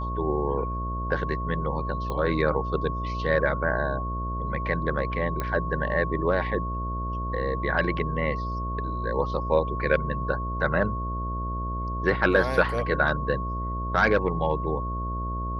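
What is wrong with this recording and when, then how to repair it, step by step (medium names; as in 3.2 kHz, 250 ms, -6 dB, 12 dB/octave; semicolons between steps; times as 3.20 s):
buzz 60 Hz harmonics 11 -31 dBFS
whine 1.1 kHz -32 dBFS
2.10 s: pop -19 dBFS
5.40 s: pop -15 dBFS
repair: de-click; band-stop 1.1 kHz, Q 30; de-hum 60 Hz, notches 11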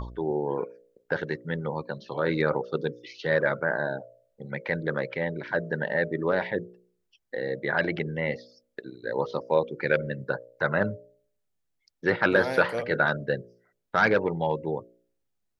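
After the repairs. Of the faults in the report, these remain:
nothing left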